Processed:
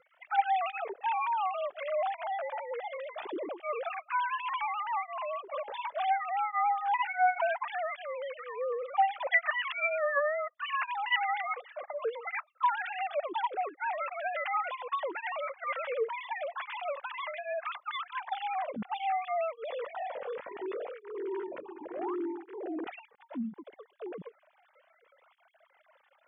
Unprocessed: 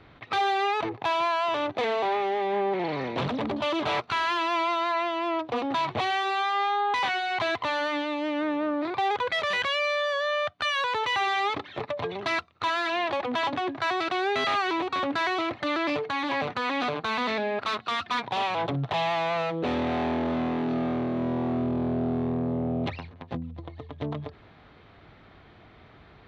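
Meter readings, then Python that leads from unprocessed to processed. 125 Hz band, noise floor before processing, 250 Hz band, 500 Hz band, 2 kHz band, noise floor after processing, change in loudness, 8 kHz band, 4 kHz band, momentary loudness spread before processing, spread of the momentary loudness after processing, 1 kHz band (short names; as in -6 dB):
under -25 dB, -53 dBFS, -14.5 dB, -6.0 dB, -5.0 dB, -68 dBFS, -6.0 dB, under -30 dB, -13.0 dB, 4 LU, 11 LU, -4.0 dB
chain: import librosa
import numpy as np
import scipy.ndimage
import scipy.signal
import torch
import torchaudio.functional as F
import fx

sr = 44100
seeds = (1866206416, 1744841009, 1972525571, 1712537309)

y = fx.sine_speech(x, sr)
y = fx.spec_paint(y, sr, seeds[0], shape='rise', start_s=21.81, length_s=0.35, low_hz=270.0, high_hz=1400.0, level_db=-35.0)
y = fx.flanger_cancel(y, sr, hz=0.69, depth_ms=3.2)
y = y * librosa.db_to_amplitude(-2.5)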